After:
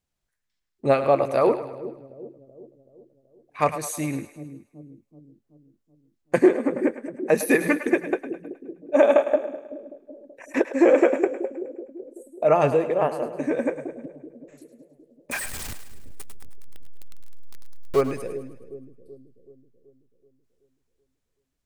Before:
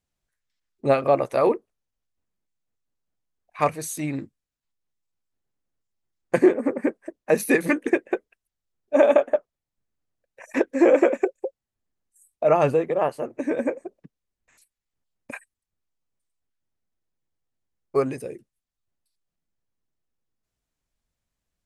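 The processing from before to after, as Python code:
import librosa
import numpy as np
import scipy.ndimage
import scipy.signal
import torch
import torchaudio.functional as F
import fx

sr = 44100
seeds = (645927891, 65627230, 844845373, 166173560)

y = fx.zero_step(x, sr, step_db=-25.5, at=(15.31, 18.01))
y = fx.echo_split(y, sr, split_hz=460.0, low_ms=379, high_ms=105, feedback_pct=52, wet_db=-11.5)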